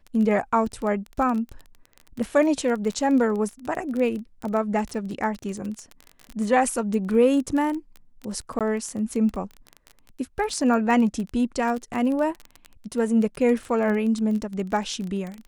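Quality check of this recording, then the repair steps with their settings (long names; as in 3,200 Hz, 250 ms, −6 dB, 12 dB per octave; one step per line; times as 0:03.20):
surface crackle 21 per second −28 dBFS
0:08.59–0:08.61: drop-out 17 ms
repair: click removal
repair the gap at 0:08.59, 17 ms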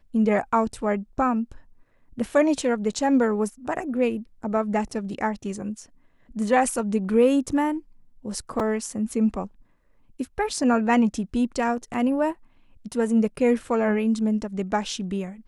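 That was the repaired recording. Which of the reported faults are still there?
none of them is left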